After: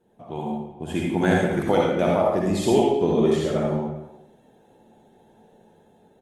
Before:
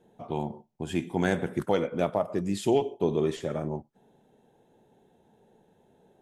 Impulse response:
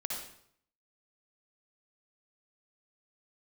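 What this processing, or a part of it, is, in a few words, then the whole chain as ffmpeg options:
speakerphone in a meeting room: -filter_complex "[1:a]atrim=start_sample=2205[link_01];[0:a][link_01]afir=irnorm=-1:irlink=0,asplit=2[link_02][link_03];[link_03]adelay=310,highpass=300,lowpass=3400,asoftclip=type=hard:threshold=-20.5dB,volume=-18dB[link_04];[link_02][link_04]amix=inputs=2:normalize=0,dynaudnorm=framelen=240:gausssize=7:maxgain=5.5dB" -ar 48000 -c:a libopus -b:a 32k

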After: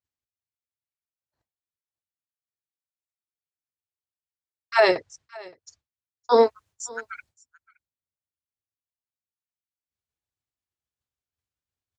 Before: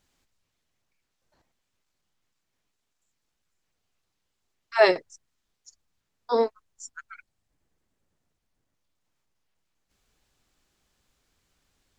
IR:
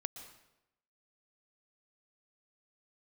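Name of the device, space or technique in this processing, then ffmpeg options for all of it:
car stereo with a boomy subwoofer: -filter_complex "[0:a]lowshelf=frequency=130:width_type=q:width=1.5:gain=10,alimiter=limit=-14dB:level=0:latency=1:release=234,highpass=110,agate=range=-33dB:threshold=-54dB:ratio=3:detection=peak,asettb=1/sr,asplit=3[link_01][link_02][link_03];[link_01]atrim=end=4.954[link_04];[link_02]atrim=start=4.95:end=6.32,asetpts=PTS-STARTPTS,afade=type=in:duration=0.004:curve=qsin,afade=type=out:start_time=1.366:duration=0.004:curve=qsin,lowpass=6000[link_05];[link_03]atrim=start=6.316[link_06];[link_04][link_05]acrossfade=duration=0.004:curve1=hsin:curve2=qsin[link_07];[link_07][link_06]acrossfade=duration=0.004:curve1=qsin:curve2=hsin,aecho=1:1:569:0.0708,volume=7dB"

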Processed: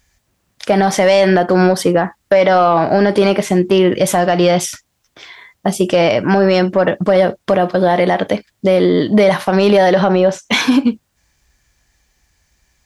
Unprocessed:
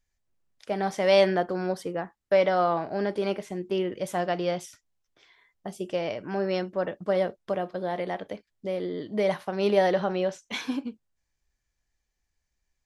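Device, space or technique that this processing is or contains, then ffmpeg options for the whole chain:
mastering chain: -filter_complex "[0:a]highpass=41,equalizer=frequency=430:width_type=o:width=0.74:gain=-3,acompressor=threshold=-28dB:ratio=2.5,asoftclip=type=tanh:threshold=-19dB,alimiter=level_in=24.5dB:limit=-1dB:release=50:level=0:latency=1,asplit=3[link_01][link_02][link_03];[link_01]afade=type=out:start_time=10.07:duration=0.02[link_04];[link_02]adynamicequalizer=threshold=0.0447:dfrequency=1500:dqfactor=0.7:tfrequency=1500:tqfactor=0.7:attack=5:release=100:ratio=0.375:range=3:mode=cutabove:tftype=highshelf,afade=type=in:start_time=10.07:duration=0.02,afade=type=out:start_time=10.67:duration=0.02[link_05];[link_03]afade=type=in:start_time=10.67:duration=0.02[link_06];[link_04][link_05][link_06]amix=inputs=3:normalize=0,volume=-2dB"

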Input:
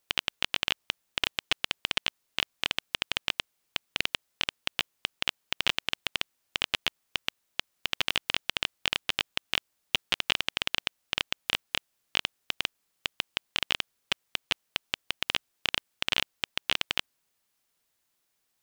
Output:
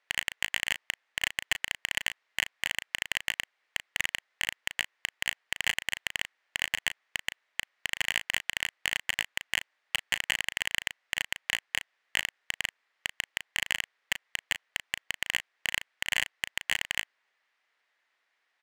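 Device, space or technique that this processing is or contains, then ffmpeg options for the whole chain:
megaphone: -filter_complex "[0:a]highpass=590,lowpass=3000,equalizer=frequency=1900:width_type=o:width=0.54:gain=9,asoftclip=type=hard:threshold=-18.5dB,asplit=2[link_01][link_02];[link_02]adelay=36,volume=-11dB[link_03];[link_01][link_03]amix=inputs=2:normalize=0,volume=5dB"

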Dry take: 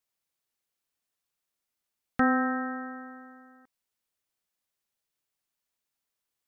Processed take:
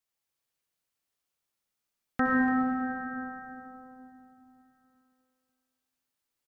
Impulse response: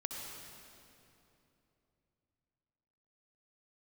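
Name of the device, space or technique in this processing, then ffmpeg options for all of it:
cave: -filter_complex "[0:a]aecho=1:1:288:0.211[link_01];[1:a]atrim=start_sample=2205[link_02];[link_01][link_02]afir=irnorm=-1:irlink=0"

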